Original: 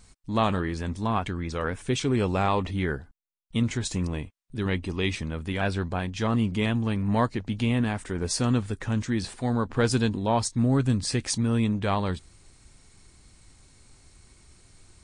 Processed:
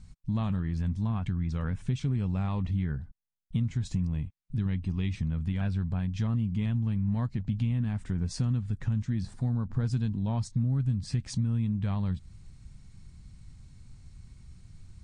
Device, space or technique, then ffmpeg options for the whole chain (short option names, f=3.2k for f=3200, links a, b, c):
jukebox: -filter_complex "[0:a]asettb=1/sr,asplit=3[a][b][c];[a]atrim=end=9.234[d];[b]atrim=start=9.23:end=9.86,asetpts=PTS-STARTPTS,afade=t=in:d=0.004:c=qsin,afade=t=out:st=0.626:d=0.004:c=qsin,equalizer=f=2.7k:w=1.6:g=-9.5[e];[c]atrim=start=9.856[f];[d][e]acrossfade=d=0.004:c1=hsin:c2=qsin[g];[g][f]acrossfade=d=0.004:c1=qsin:c2=hsin,lowpass=7.5k,lowshelf=f=250:t=q:w=1.5:g=13.5,acompressor=threshold=-19dB:ratio=4,volume=-7.5dB"